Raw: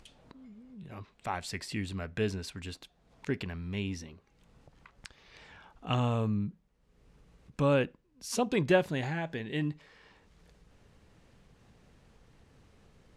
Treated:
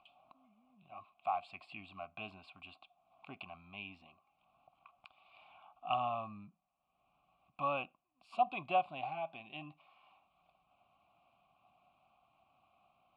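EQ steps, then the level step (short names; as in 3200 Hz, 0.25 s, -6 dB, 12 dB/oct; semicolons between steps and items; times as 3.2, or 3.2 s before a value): vowel filter a; LPF 7300 Hz; fixed phaser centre 1700 Hz, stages 6; +8.5 dB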